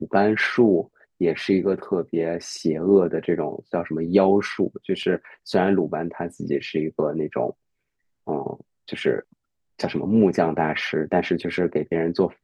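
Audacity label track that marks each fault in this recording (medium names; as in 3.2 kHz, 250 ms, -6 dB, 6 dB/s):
5.030000	5.030000	dropout 3.3 ms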